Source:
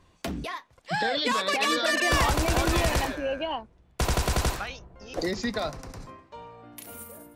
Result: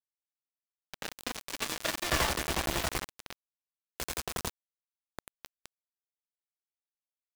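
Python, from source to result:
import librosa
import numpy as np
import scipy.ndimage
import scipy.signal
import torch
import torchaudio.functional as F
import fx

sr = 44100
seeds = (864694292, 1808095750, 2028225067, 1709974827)

p1 = x + fx.echo_heads(x, sr, ms=117, heads='second and third', feedback_pct=42, wet_db=-12.5, dry=0)
p2 = fx.power_curve(p1, sr, exponent=2.0)
p3 = fx.rev_freeverb(p2, sr, rt60_s=3.0, hf_ratio=0.4, predelay_ms=15, drr_db=10.5)
y = np.where(np.abs(p3) >= 10.0 ** (-25.0 / 20.0), p3, 0.0)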